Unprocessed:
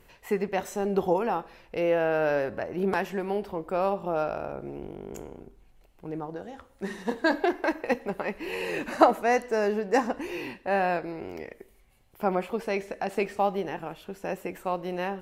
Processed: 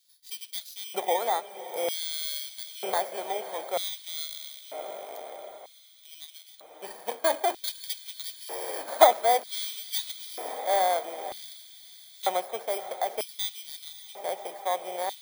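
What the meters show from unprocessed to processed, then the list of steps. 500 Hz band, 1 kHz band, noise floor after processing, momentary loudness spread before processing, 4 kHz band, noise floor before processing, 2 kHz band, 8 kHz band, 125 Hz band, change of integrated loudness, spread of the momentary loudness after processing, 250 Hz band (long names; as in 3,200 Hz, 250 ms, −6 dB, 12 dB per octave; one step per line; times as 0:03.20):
−3.0 dB, +0.5 dB, −54 dBFS, 14 LU, +11.0 dB, −58 dBFS, −6.0 dB, +12.0 dB, below −25 dB, −1.0 dB, 18 LU, −17.0 dB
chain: samples in bit-reversed order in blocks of 16 samples
mains-hum notches 50/100/150/200/250/300/350 Hz
in parallel at −9.5 dB: centre clipping without the shift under −35.5 dBFS
on the sum: feedback delay with all-pass diffusion 598 ms, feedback 60%, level −12.5 dB
auto-filter high-pass square 0.53 Hz 660–3,900 Hz
level −5.5 dB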